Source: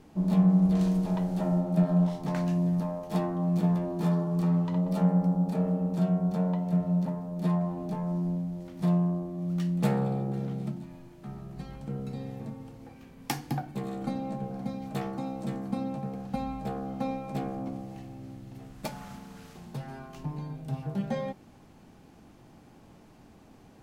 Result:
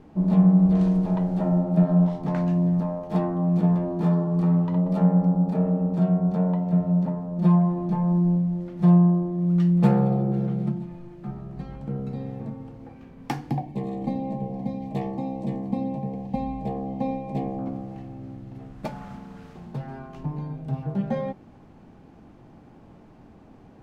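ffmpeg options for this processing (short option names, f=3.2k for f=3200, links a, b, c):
-filter_complex "[0:a]asettb=1/sr,asplit=3[a][b][c];[a]atrim=end=7.384[d];[b]atrim=start=7.38:end=11.31,asetpts=PTS-STARTPTS,afade=t=in:d=0.004:c=qsin,afade=t=out:st=3.926:d=0.004:c=qsin,aecho=1:1:5.7:0.65,atrim=end_sample=173313[e];[c]atrim=start=11.306[f];[d][e]acrossfade=d=0.004:c1=hsin:c2=qsin[g];[g][f]acrossfade=d=0.004:c1=qsin:c2=hsin,asettb=1/sr,asplit=3[h][i][j];[h]atrim=end=13.514[k];[i]atrim=start=13.51:end=17.59,asetpts=PTS-STARTPTS,afade=t=in:d=0.004:c=qsin,afade=t=out:st=4.076:d=0.004:c=qsin,asuperstop=centerf=1400:order=4:qfactor=1.8[l];[j]atrim=start=17.586[m];[k][l]acrossfade=d=0.004:c1=hsin:c2=qsin[n];[n][m]acrossfade=d=0.004:c1=qsin:c2=hsin,lowpass=f=1.4k:p=1,volume=5dB"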